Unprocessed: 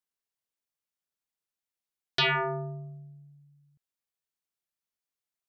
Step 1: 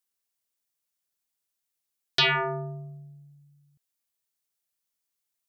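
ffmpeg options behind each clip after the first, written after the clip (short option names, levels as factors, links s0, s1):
-af "highshelf=f=4400:g=9,volume=1.12"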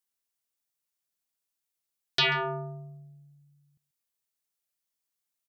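-af "aecho=1:1:136:0.0891,volume=0.75"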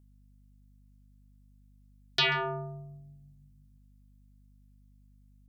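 -af "aeval=exprs='val(0)+0.00141*(sin(2*PI*50*n/s)+sin(2*PI*2*50*n/s)/2+sin(2*PI*3*50*n/s)/3+sin(2*PI*4*50*n/s)/4+sin(2*PI*5*50*n/s)/5)':c=same,volume=0.841"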